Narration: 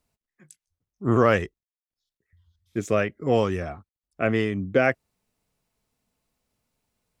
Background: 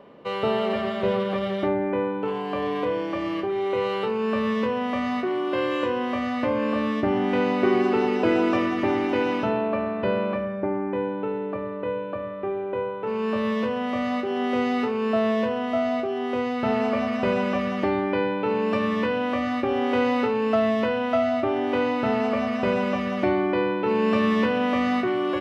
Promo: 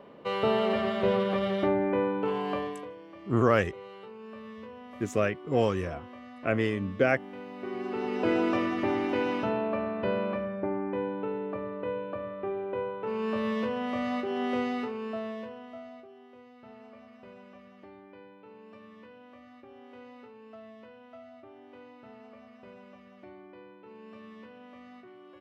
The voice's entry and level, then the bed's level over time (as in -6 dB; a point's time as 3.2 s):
2.25 s, -4.0 dB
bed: 2.52 s -2 dB
2.95 s -20 dB
7.49 s -20 dB
8.29 s -5 dB
14.53 s -5 dB
16.35 s -27 dB